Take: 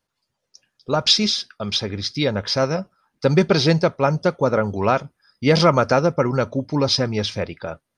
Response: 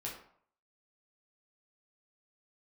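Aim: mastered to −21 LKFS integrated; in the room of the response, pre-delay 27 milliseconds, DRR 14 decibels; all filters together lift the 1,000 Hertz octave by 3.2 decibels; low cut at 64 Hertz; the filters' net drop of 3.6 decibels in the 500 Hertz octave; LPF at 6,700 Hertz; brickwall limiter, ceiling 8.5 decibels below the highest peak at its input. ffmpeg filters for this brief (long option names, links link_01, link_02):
-filter_complex "[0:a]highpass=64,lowpass=6700,equalizer=frequency=500:width_type=o:gain=-6,equalizer=frequency=1000:width_type=o:gain=6,alimiter=limit=-9dB:level=0:latency=1,asplit=2[link_01][link_02];[1:a]atrim=start_sample=2205,adelay=27[link_03];[link_02][link_03]afir=irnorm=-1:irlink=0,volume=-14dB[link_04];[link_01][link_04]amix=inputs=2:normalize=0,volume=1.5dB"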